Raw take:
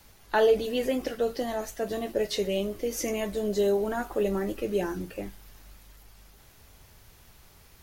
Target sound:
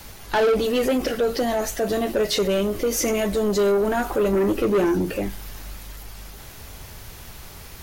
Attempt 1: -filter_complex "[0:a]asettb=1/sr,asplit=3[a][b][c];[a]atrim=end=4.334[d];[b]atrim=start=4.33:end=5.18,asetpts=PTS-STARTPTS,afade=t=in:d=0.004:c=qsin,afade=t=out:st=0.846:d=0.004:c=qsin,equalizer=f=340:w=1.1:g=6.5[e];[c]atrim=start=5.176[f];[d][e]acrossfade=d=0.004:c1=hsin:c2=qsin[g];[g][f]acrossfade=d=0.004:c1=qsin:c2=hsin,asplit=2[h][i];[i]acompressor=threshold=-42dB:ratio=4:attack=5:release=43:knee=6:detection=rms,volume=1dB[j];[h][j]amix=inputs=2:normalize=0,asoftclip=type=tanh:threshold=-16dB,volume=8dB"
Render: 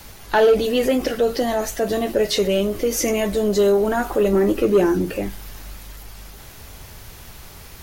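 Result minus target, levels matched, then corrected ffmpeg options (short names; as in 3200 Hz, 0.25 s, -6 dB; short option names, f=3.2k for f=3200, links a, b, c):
soft clip: distortion -8 dB
-filter_complex "[0:a]asettb=1/sr,asplit=3[a][b][c];[a]atrim=end=4.334[d];[b]atrim=start=4.33:end=5.18,asetpts=PTS-STARTPTS,afade=t=in:d=0.004:c=qsin,afade=t=out:st=0.846:d=0.004:c=qsin,equalizer=f=340:w=1.1:g=6.5[e];[c]atrim=start=5.176[f];[d][e]acrossfade=d=0.004:c1=hsin:c2=qsin[g];[g][f]acrossfade=d=0.004:c1=qsin:c2=hsin,asplit=2[h][i];[i]acompressor=threshold=-42dB:ratio=4:attack=5:release=43:knee=6:detection=rms,volume=1dB[j];[h][j]amix=inputs=2:normalize=0,asoftclip=type=tanh:threshold=-23.5dB,volume=8dB"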